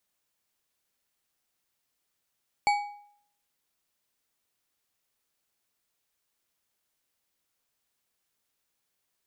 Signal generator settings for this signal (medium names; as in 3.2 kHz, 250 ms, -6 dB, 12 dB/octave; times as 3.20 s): metal hit bar, lowest mode 823 Hz, decay 0.63 s, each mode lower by 6.5 dB, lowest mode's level -18.5 dB